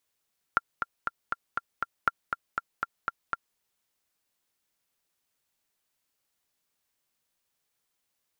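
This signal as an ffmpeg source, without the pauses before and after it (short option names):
-f lavfi -i "aevalsrc='pow(10,(-8.5-6.5*gte(mod(t,6*60/239),60/239))/20)*sin(2*PI*1380*mod(t,60/239))*exp(-6.91*mod(t,60/239)/0.03)':d=3.01:s=44100"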